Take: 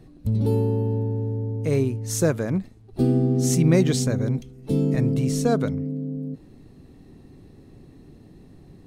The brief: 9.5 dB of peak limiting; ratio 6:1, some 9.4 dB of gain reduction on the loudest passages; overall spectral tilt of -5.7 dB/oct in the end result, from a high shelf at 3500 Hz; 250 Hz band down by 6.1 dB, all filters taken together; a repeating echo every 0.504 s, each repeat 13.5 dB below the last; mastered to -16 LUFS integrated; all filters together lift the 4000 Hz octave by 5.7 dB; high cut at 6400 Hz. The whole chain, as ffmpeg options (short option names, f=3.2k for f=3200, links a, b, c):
-af "lowpass=6.4k,equalizer=f=250:t=o:g=-8.5,highshelf=f=3.5k:g=6.5,equalizer=f=4k:t=o:g=3.5,acompressor=threshold=-27dB:ratio=6,alimiter=level_in=2.5dB:limit=-24dB:level=0:latency=1,volume=-2.5dB,aecho=1:1:504|1008:0.211|0.0444,volume=19dB"